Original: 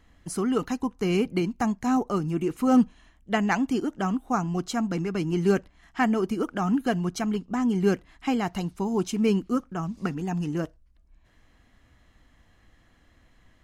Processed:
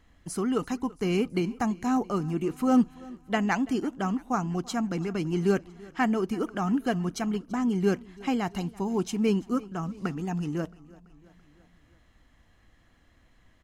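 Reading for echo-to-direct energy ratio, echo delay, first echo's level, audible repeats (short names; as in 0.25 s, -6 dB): -20.5 dB, 0.335 s, -22.0 dB, 3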